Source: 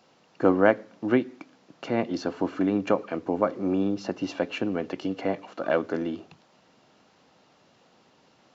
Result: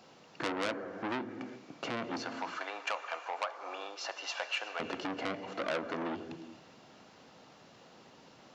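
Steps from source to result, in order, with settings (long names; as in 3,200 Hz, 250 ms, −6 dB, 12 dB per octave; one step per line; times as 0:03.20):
0:02.23–0:04.80: high-pass filter 790 Hz 24 dB per octave
downward compressor 2.5 to 1, threshold −34 dBFS, peak gain reduction 14 dB
reverb whose tail is shaped and stops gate 430 ms flat, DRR 10 dB
saturating transformer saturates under 3,000 Hz
level +3 dB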